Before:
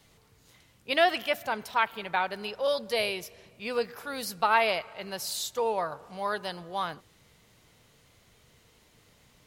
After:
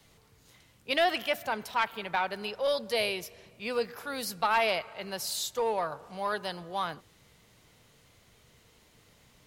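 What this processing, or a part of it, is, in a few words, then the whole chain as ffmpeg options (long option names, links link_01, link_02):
one-band saturation: -filter_complex "[0:a]acrossover=split=220|2900[link_01][link_02][link_03];[link_02]asoftclip=type=tanh:threshold=-19.5dB[link_04];[link_01][link_04][link_03]amix=inputs=3:normalize=0"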